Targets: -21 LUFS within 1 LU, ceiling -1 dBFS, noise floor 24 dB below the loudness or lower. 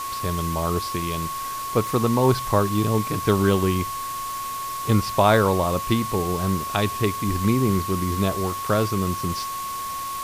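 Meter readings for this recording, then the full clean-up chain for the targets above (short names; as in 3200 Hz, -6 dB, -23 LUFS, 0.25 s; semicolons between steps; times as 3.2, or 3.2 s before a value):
steady tone 1100 Hz; tone level -28 dBFS; noise floor -30 dBFS; noise floor target -47 dBFS; loudness -23.0 LUFS; peak -4.5 dBFS; loudness target -21.0 LUFS
-> notch 1100 Hz, Q 30; noise print and reduce 17 dB; gain +2 dB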